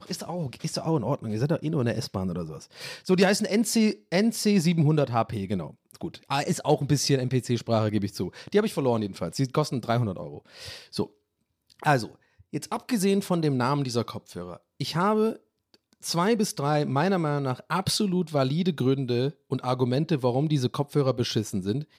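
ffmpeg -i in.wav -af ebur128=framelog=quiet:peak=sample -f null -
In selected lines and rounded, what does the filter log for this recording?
Integrated loudness:
  I:         -26.2 LUFS
  Threshold: -36.7 LUFS
Loudness range:
  LRA:         5.2 LU
  Threshold: -46.7 LUFS
  LRA low:   -29.5 LUFS
  LRA high:  -24.4 LUFS
Sample peak:
  Peak:       -9.9 dBFS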